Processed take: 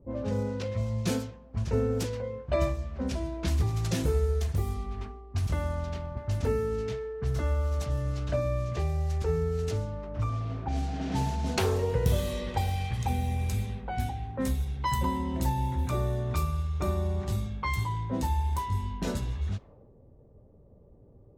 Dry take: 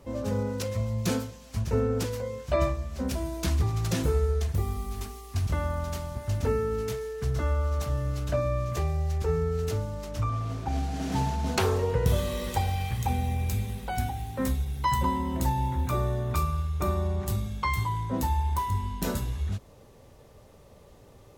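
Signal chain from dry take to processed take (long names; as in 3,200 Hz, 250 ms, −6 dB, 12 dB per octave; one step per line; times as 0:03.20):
dynamic equaliser 1,200 Hz, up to −4 dB, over −43 dBFS, Q 1.6
low-pass that shuts in the quiet parts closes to 350 Hz, open at −23.5 dBFS
level −1 dB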